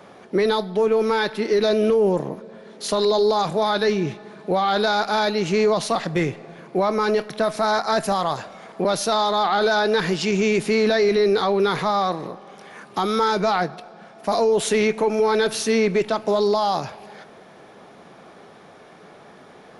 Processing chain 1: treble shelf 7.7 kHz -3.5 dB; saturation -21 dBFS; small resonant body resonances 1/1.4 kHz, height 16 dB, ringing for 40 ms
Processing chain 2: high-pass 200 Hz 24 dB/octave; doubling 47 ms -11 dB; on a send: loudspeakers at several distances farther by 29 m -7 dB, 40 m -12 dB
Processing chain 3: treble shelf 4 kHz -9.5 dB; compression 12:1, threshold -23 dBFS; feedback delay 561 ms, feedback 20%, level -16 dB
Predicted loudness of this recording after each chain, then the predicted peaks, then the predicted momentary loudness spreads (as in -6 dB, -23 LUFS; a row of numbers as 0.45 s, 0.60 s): -23.5 LUFS, -19.5 LUFS, -28.0 LUFS; -8.0 dBFS, -6.0 dBFS, -13.0 dBFS; 22 LU, 10 LU, 19 LU